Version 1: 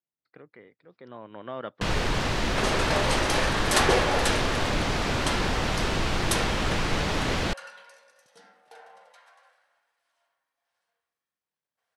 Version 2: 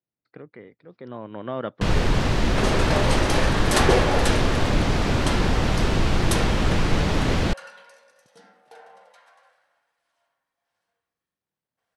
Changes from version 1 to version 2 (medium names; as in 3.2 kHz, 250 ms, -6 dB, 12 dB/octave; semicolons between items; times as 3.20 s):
speech +3.0 dB; master: add bass shelf 450 Hz +8 dB